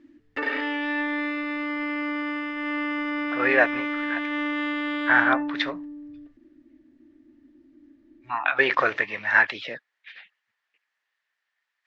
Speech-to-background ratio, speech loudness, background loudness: 5.5 dB, -22.5 LUFS, -28.0 LUFS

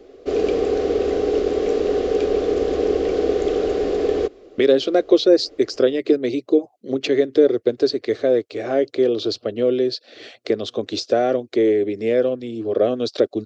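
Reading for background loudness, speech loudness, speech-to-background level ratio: -21.0 LUFS, -20.0 LUFS, 1.0 dB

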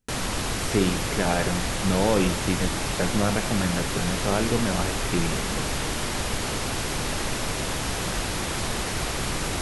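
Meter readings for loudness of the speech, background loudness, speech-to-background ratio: -27.0 LUFS, -27.5 LUFS, 0.5 dB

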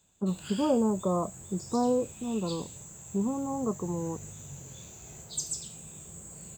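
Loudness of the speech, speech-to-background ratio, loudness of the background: -31.0 LUFS, 10.5 dB, -41.5 LUFS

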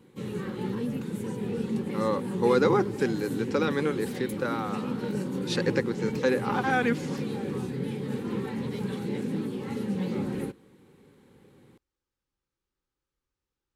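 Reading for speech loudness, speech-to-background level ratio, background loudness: -28.5 LUFS, 4.0 dB, -32.5 LUFS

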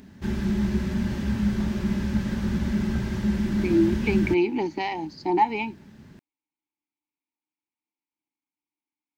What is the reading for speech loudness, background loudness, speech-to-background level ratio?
-25.5 LUFS, -26.5 LUFS, 1.0 dB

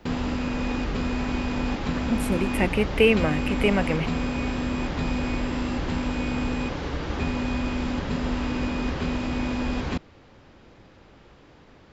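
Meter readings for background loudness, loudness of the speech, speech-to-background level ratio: -28.0 LUFS, -24.0 LUFS, 4.0 dB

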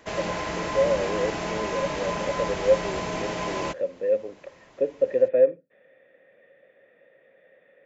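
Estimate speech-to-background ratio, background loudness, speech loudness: 3.5 dB, -30.0 LUFS, -26.5 LUFS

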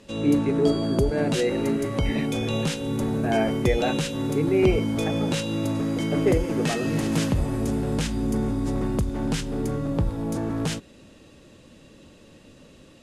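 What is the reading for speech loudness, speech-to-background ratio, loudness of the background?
-27.0 LUFS, -0.5 dB, -26.5 LUFS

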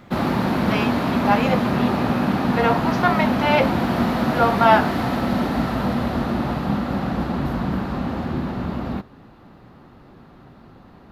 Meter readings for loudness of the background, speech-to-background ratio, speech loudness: -22.0 LUFS, 0.0 dB, -22.0 LUFS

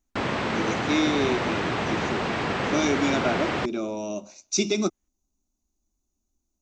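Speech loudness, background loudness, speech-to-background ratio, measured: -28.0 LUFS, -27.0 LUFS, -1.0 dB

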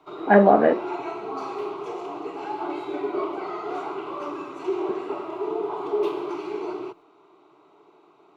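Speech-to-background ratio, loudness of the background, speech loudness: 12.5 dB, -30.5 LUFS, -18.0 LUFS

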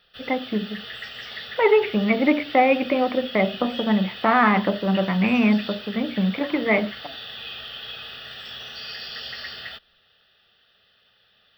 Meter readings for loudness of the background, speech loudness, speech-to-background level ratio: -35.0 LUFS, -21.5 LUFS, 13.5 dB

